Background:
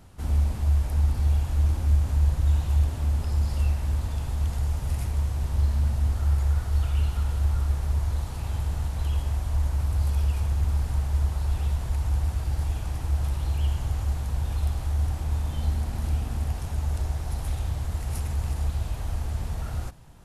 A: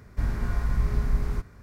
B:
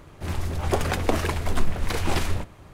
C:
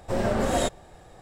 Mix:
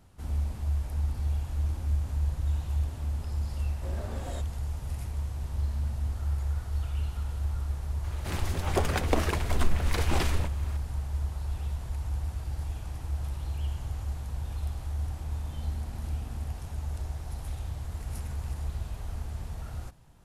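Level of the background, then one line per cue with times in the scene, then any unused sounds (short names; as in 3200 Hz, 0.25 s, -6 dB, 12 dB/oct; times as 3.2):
background -7 dB
3.73 add C -17 dB
8.04 add B -3.5 dB + mismatched tape noise reduction encoder only
17.83 add A -7.5 dB + compressor 4:1, threshold -36 dBFS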